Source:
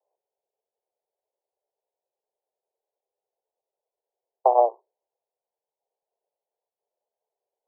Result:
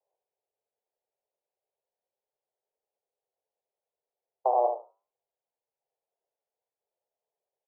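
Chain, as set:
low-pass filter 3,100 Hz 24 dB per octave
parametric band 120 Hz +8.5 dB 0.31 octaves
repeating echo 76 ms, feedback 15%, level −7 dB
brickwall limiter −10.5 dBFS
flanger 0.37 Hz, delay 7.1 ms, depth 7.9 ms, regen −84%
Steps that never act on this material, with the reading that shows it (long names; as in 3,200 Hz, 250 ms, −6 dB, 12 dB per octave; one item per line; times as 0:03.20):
low-pass filter 3,100 Hz: nothing at its input above 1,100 Hz
parametric band 120 Hz: nothing at its input below 340 Hz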